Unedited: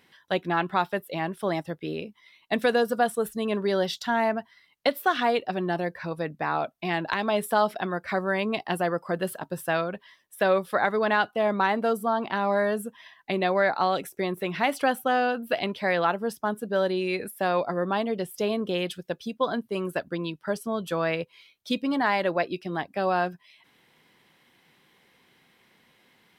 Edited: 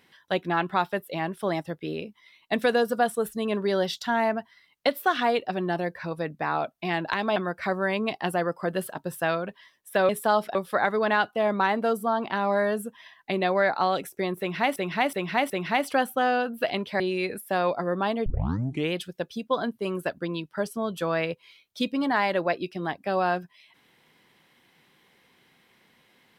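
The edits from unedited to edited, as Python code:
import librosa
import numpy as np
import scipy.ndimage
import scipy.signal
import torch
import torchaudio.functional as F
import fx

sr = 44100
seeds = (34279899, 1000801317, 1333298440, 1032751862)

y = fx.edit(x, sr, fx.move(start_s=7.36, length_s=0.46, to_s=10.55),
    fx.repeat(start_s=14.39, length_s=0.37, count=4),
    fx.cut(start_s=15.89, length_s=1.01),
    fx.tape_start(start_s=18.16, length_s=0.67), tone=tone)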